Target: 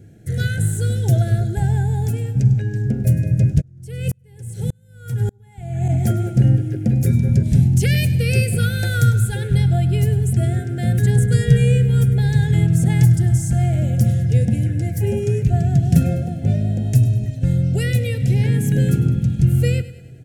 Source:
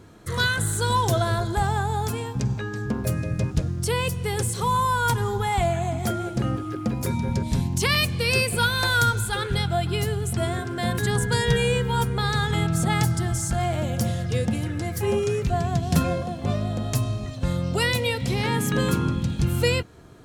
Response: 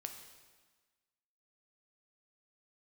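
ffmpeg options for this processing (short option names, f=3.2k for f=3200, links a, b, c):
-filter_complex "[0:a]equalizer=f=125:t=o:w=1:g=12,equalizer=f=1k:t=o:w=1:g=-10,equalizer=f=4k:t=o:w=1:g=-9,dynaudnorm=f=790:g=9:m=11.5dB,asuperstop=centerf=1100:order=12:qfactor=2.1,aecho=1:1:101|202|303|404|505:0.158|0.084|0.0445|0.0236|0.0125,asplit=3[a][b][c];[a]afade=t=out:st=3.6:d=0.02[d];[b]aeval=exprs='val(0)*pow(10,-39*if(lt(mod(-1.7*n/s,1),2*abs(-1.7)/1000),1-mod(-1.7*n/s,1)/(2*abs(-1.7)/1000),(mod(-1.7*n/s,1)-2*abs(-1.7)/1000)/(1-2*abs(-1.7)/1000))/20)':c=same,afade=t=in:st=3.6:d=0.02,afade=t=out:st=5.88:d=0.02[e];[c]afade=t=in:st=5.88:d=0.02[f];[d][e][f]amix=inputs=3:normalize=0,volume=-1dB"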